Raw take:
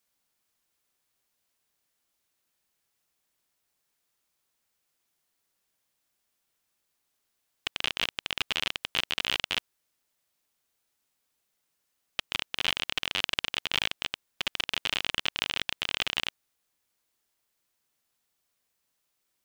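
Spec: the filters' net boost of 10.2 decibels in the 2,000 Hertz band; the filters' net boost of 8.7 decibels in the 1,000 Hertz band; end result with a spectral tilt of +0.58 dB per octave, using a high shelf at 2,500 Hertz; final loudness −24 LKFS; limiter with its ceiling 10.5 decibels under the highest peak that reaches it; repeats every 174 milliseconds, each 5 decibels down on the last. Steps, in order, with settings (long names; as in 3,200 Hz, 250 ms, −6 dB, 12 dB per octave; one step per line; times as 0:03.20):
parametric band 1,000 Hz +7 dB
parametric band 2,000 Hz +9 dB
high-shelf EQ 2,500 Hz +5 dB
brickwall limiter −8.5 dBFS
repeating echo 174 ms, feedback 56%, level −5 dB
level +2 dB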